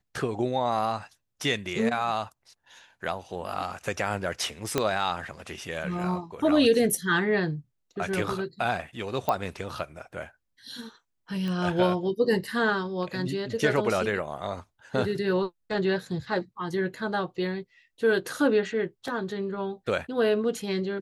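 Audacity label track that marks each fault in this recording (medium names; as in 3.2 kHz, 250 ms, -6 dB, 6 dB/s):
4.780000	4.780000	pop -9 dBFS
9.290000	9.290000	pop -13 dBFS
11.480000	11.480000	pop -22 dBFS
19.080000	19.080000	dropout 2.1 ms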